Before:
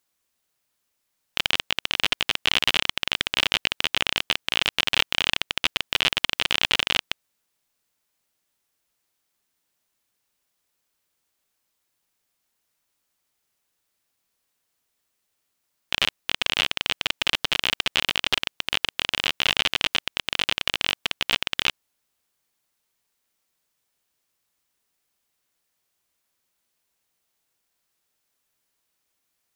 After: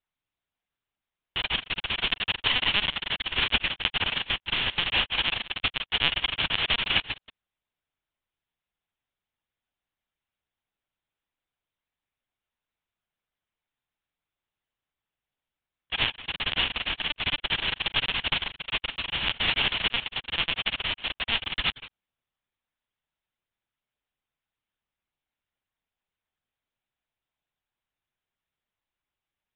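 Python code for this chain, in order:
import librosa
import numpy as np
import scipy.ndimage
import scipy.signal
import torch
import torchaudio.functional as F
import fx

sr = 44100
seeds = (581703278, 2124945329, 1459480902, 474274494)

y = x + 10.0 ** (-11.5 / 20.0) * np.pad(x, (int(172 * sr / 1000.0), 0))[:len(x)]
y = fx.lpc_vocoder(y, sr, seeds[0], excitation='pitch_kept', order=10)
y = fx.upward_expand(y, sr, threshold_db=-36.0, expansion=1.5)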